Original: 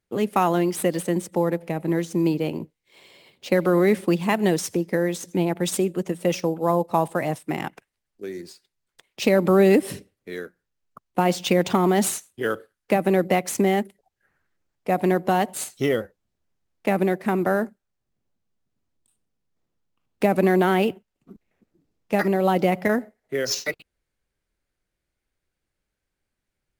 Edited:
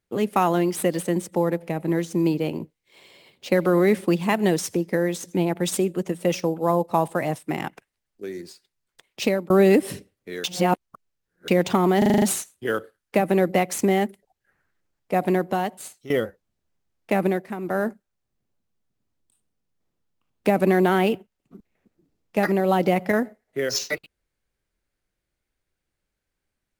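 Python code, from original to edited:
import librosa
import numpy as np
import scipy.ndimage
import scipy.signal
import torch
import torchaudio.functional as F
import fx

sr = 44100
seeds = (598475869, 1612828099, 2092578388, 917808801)

y = fx.edit(x, sr, fx.fade_out_span(start_s=9.22, length_s=0.28),
    fx.reverse_span(start_s=10.44, length_s=1.04),
    fx.stutter(start_s=11.98, slice_s=0.04, count=7),
    fx.fade_out_to(start_s=15.0, length_s=0.86, floor_db=-18.0),
    fx.fade_down_up(start_s=17.02, length_s=0.62, db=-11.0, fade_s=0.31), tone=tone)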